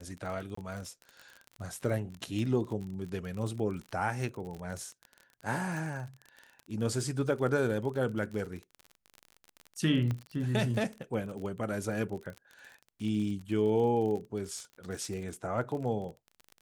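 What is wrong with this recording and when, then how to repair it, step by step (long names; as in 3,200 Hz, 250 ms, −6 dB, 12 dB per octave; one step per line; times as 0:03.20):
surface crackle 38 per second −37 dBFS
0:00.55–0:00.57: drop-out 24 ms
0:10.11: click −22 dBFS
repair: click removal
repair the gap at 0:00.55, 24 ms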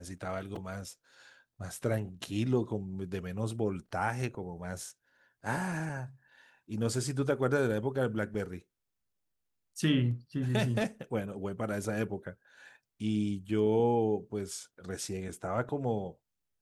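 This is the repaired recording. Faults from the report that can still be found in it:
0:10.11: click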